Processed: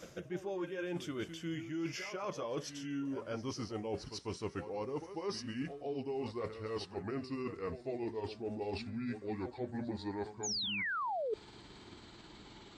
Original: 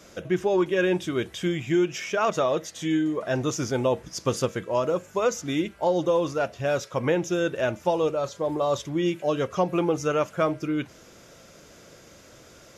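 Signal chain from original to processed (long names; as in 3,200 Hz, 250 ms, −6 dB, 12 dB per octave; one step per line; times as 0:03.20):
pitch glide at a constant tempo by −8.5 semitones starting unshifted
echo ahead of the sound 145 ms −14 dB
sound drawn into the spectrogram fall, 0:10.43–0:11.34, 410–7,100 Hz −19 dBFS
reversed playback
downward compressor 6 to 1, threshold −34 dBFS, peak gain reduction 17 dB
reversed playback
level −3 dB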